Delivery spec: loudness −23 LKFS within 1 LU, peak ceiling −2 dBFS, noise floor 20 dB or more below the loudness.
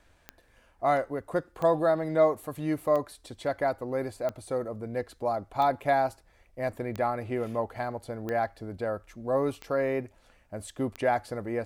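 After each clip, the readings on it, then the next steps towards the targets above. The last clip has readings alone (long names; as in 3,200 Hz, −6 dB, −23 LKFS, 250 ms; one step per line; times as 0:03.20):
number of clicks 9; integrated loudness −29.5 LKFS; sample peak −11.5 dBFS; target loudness −23.0 LKFS
→ click removal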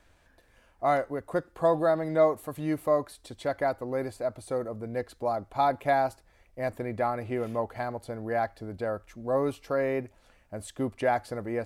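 number of clicks 0; integrated loudness −29.5 LKFS; sample peak −11.5 dBFS; target loudness −23.0 LKFS
→ level +6.5 dB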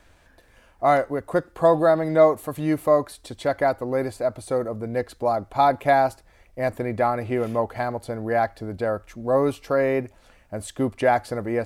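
integrated loudness −23.0 LKFS; sample peak −5.0 dBFS; background noise floor −56 dBFS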